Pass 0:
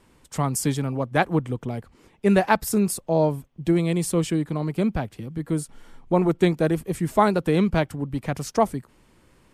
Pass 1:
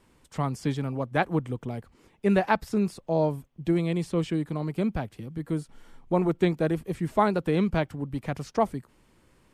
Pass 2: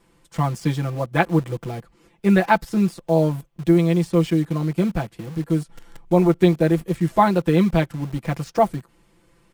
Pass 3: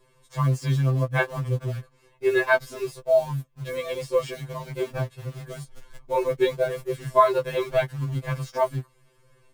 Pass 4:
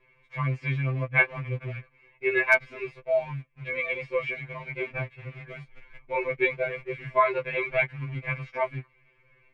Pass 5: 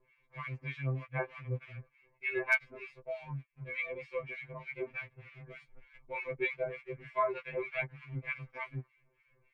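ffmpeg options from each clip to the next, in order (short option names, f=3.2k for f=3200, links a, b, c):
-filter_complex "[0:a]acrossover=split=4800[a][b];[b]acompressor=threshold=-50dB:ratio=4:attack=1:release=60[c];[a][c]amix=inputs=2:normalize=0,volume=-4dB"
-filter_complex "[0:a]aecho=1:1:5.9:0.93,asplit=2[a][b];[b]acrusher=bits=5:mix=0:aa=0.000001,volume=-7.5dB[c];[a][c]amix=inputs=2:normalize=0"
-af "afftfilt=real='re*2.45*eq(mod(b,6),0)':imag='im*2.45*eq(mod(b,6),0)':win_size=2048:overlap=0.75"
-af "lowpass=f=2.3k:t=q:w=10,asoftclip=type=hard:threshold=-2.5dB,volume=-6dB"
-filter_complex "[0:a]acrossover=split=1200[a][b];[a]aeval=exprs='val(0)*(1-1/2+1/2*cos(2*PI*3.3*n/s))':c=same[c];[b]aeval=exprs='val(0)*(1-1/2-1/2*cos(2*PI*3.3*n/s))':c=same[d];[c][d]amix=inputs=2:normalize=0,volume=-4dB"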